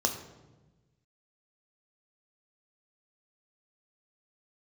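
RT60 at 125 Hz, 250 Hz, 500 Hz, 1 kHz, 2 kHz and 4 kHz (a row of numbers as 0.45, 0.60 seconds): 1.7, 1.6, 1.3, 1.0, 0.90, 0.75 seconds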